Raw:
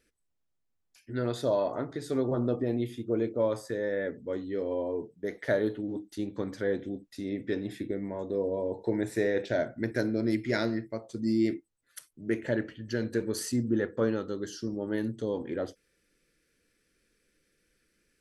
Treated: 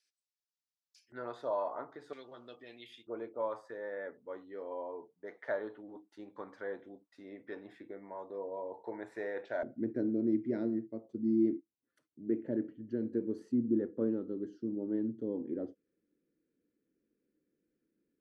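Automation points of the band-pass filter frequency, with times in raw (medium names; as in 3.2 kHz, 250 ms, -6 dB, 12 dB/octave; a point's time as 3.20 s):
band-pass filter, Q 2
5 kHz
from 1.12 s 990 Hz
from 2.13 s 3 kHz
from 3.07 s 1 kHz
from 9.63 s 280 Hz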